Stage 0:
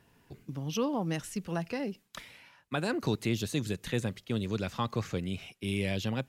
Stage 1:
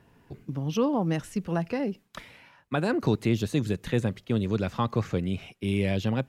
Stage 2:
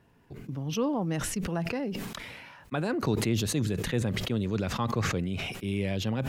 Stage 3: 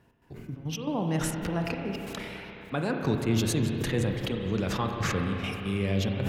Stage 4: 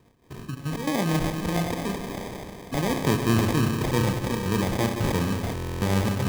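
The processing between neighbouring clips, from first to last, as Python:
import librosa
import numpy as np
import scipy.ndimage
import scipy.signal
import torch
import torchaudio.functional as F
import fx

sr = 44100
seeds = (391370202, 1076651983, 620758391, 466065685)

y1 = fx.high_shelf(x, sr, hz=2400.0, db=-9.5)
y1 = y1 * 10.0 ** (6.0 / 20.0)
y2 = fx.sustainer(y1, sr, db_per_s=28.0)
y2 = y2 * 10.0 ** (-4.0 / 20.0)
y3 = fx.step_gate(y2, sr, bpm=138, pattern='x.xxx.x.xxx', floor_db=-12.0, edge_ms=4.5)
y3 = fx.rev_spring(y3, sr, rt60_s=3.5, pass_ms=(31, 35), chirp_ms=60, drr_db=2.5)
y4 = fx.sample_hold(y3, sr, seeds[0], rate_hz=1400.0, jitter_pct=0)
y4 = fx.buffer_glitch(y4, sr, at_s=(5.54,), block=1024, repeats=11)
y4 = y4 * 10.0 ** (4.0 / 20.0)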